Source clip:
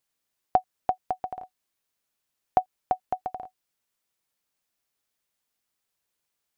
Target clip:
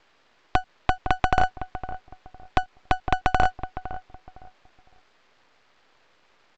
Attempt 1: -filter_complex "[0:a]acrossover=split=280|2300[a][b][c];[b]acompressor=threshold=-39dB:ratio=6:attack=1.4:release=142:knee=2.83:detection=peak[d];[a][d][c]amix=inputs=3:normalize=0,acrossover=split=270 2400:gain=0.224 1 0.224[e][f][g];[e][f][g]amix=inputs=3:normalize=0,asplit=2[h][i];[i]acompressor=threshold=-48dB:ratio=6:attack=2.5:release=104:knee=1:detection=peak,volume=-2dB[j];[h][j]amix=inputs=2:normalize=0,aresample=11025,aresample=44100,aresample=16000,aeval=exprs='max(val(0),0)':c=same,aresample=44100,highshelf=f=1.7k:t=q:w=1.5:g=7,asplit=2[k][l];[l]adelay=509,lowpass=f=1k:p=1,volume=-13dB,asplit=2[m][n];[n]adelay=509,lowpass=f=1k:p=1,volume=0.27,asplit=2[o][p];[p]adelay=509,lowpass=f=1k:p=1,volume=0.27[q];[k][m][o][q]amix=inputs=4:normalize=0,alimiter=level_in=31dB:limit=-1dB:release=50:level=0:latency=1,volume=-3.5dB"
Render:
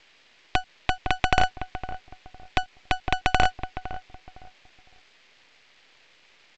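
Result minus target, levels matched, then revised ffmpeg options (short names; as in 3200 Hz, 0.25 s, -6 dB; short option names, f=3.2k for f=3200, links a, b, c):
4000 Hz band +7.5 dB
-filter_complex "[0:a]acrossover=split=280|2300[a][b][c];[b]acompressor=threshold=-39dB:ratio=6:attack=1.4:release=142:knee=2.83:detection=peak[d];[a][d][c]amix=inputs=3:normalize=0,acrossover=split=270 2400:gain=0.224 1 0.224[e][f][g];[e][f][g]amix=inputs=3:normalize=0,asplit=2[h][i];[i]acompressor=threshold=-48dB:ratio=6:attack=2.5:release=104:knee=1:detection=peak,volume=-2dB[j];[h][j]amix=inputs=2:normalize=0,aresample=11025,aresample=44100,aresample=16000,aeval=exprs='max(val(0),0)':c=same,aresample=44100,asplit=2[k][l];[l]adelay=509,lowpass=f=1k:p=1,volume=-13dB,asplit=2[m][n];[n]adelay=509,lowpass=f=1k:p=1,volume=0.27,asplit=2[o][p];[p]adelay=509,lowpass=f=1k:p=1,volume=0.27[q];[k][m][o][q]amix=inputs=4:normalize=0,alimiter=level_in=31dB:limit=-1dB:release=50:level=0:latency=1,volume=-3.5dB"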